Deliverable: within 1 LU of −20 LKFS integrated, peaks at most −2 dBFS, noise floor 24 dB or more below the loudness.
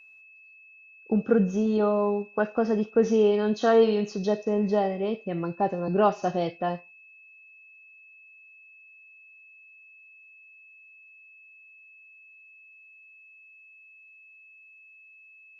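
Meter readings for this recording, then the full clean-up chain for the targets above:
interfering tone 2,600 Hz; level of the tone −50 dBFS; integrated loudness −25.0 LKFS; sample peak −8.5 dBFS; target loudness −20.0 LKFS
→ notch filter 2,600 Hz, Q 30
level +5 dB

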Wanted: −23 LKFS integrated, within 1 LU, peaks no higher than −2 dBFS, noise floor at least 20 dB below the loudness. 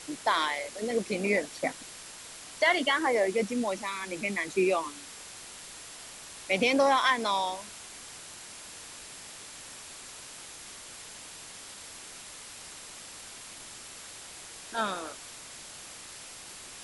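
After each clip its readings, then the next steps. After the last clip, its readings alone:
interfering tone 7,400 Hz; level of the tone −57 dBFS; background noise floor −46 dBFS; target noise floor −49 dBFS; integrated loudness −28.5 LKFS; sample peak −12.0 dBFS; target loudness −23.0 LKFS
→ notch filter 7,400 Hz, Q 30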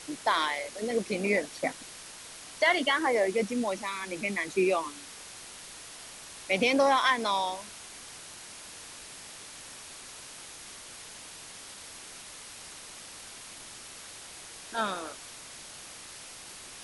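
interfering tone none found; background noise floor −46 dBFS; target noise floor −49 dBFS
→ broadband denoise 6 dB, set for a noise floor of −46 dBFS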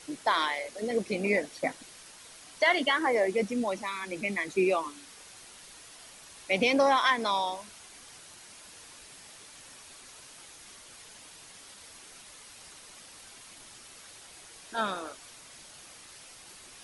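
background noise floor −51 dBFS; integrated loudness −28.5 LKFS; sample peak −12.0 dBFS; target loudness −23.0 LKFS
→ level +5.5 dB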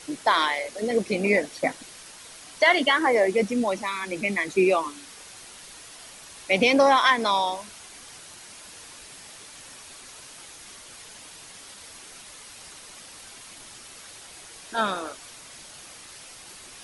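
integrated loudness −23.0 LKFS; sample peak −6.5 dBFS; background noise floor −46 dBFS

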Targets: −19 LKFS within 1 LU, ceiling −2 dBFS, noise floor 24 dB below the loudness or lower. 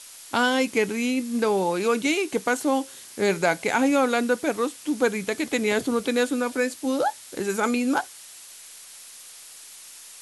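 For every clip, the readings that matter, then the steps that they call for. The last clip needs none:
background noise floor −45 dBFS; target noise floor −48 dBFS; integrated loudness −24.0 LKFS; sample peak −9.5 dBFS; target loudness −19.0 LKFS
→ noise reduction from a noise print 6 dB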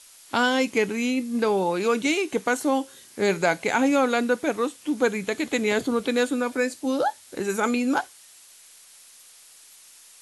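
background noise floor −51 dBFS; integrated loudness −24.5 LKFS; sample peak −9.5 dBFS; target loudness −19.0 LKFS
→ level +5.5 dB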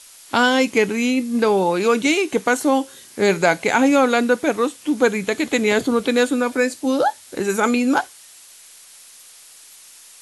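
integrated loudness −19.0 LKFS; sample peak −4.0 dBFS; background noise floor −45 dBFS

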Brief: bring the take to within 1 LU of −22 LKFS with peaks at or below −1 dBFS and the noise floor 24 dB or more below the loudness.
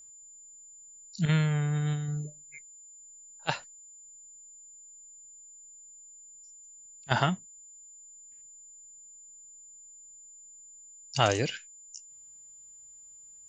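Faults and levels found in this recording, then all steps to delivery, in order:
interfering tone 7,100 Hz; level of the tone −49 dBFS; integrated loudness −30.0 LKFS; sample peak −7.5 dBFS; target loudness −22.0 LKFS
→ notch filter 7,100 Hz, Q 30
level +8 dB
brickwall limiter −1 dBFS

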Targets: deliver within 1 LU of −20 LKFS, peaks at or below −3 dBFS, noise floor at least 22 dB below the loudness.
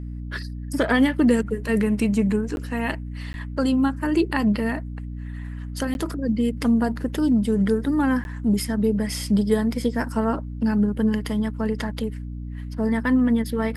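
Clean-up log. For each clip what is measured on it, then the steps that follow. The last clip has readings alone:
number of dropouts 4; longest dropout 11 ms; mains hum 60 Hz; hum harmonics up to 300 Hz; level of the hum −29 dBFS; integrated loudness −23.0 LKFS; sample peak −8.0 dBFS; target loudness −20.0 LKFS
→ repair the gap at 0:02.56/0:03.33/0:05.94/0:08.24, 11 ms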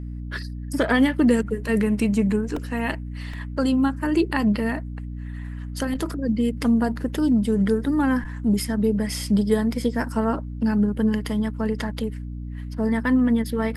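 number of dropouts 0; mains hum 60 Hz; hum harmonics up to 300 Hz; level of the hum −29 dBFS
→ mains-hum notches 60/120/180/240/300 Hz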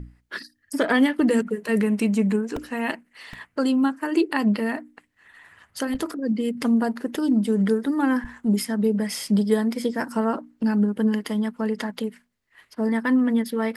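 mains hum none found; integrated loudness −23.5 LKFS; sample peak −8.5 dBFS; target loudness −20.0 LKFS
→ level +3.5 dB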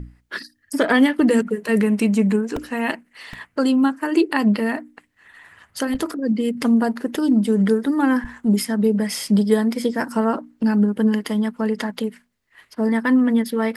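integrated loudness −20.0 LKFS; sample peak −5.0 dBFS; background noise floor −63 dBFS

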